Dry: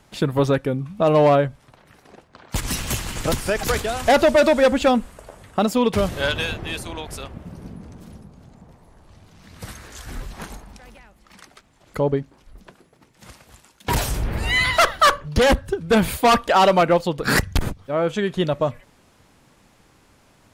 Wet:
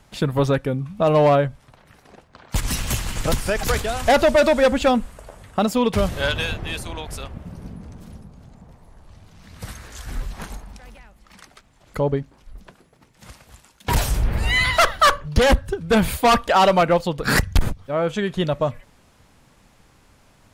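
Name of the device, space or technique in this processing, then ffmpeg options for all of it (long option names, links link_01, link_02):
low shelf boost with a cut just above: -af "lowshelf=frequency=66:gain=7,equalizer=frequency=340:width_type=o:width=0.68:gain=-3"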